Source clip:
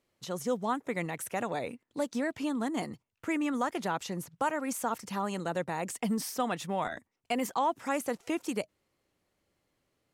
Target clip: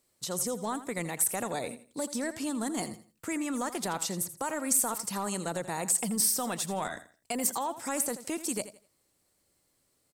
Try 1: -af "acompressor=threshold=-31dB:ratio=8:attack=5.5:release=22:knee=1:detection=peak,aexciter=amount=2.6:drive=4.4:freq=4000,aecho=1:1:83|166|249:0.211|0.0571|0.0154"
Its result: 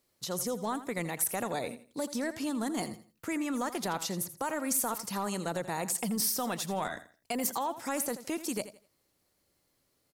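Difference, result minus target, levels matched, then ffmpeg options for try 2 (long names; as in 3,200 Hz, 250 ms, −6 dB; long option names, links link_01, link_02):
8,000 Hz band −3.0 dB
-af "acompressor=threshold=-31dB:ratio=8:attack=5.5:release=22:knee=1:detection=peak,equalizer=frequency=8200:width=3.3:gain=9.5,aexciter=amount=2.6:drive=4.4:freq=4000,aecho=1:1:83|166|249:0.211|0.0571|0.0154"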